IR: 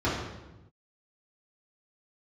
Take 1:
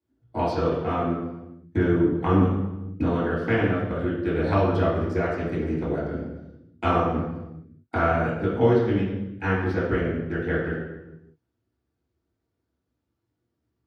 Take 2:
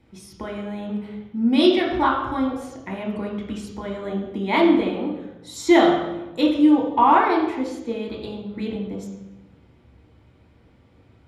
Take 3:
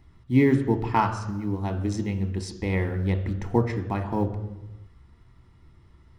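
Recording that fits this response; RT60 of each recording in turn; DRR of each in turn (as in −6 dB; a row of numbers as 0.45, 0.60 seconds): 1; 1.0, 1.0, 1.0 seconds; −8.5, −2.0, 6.5 decibels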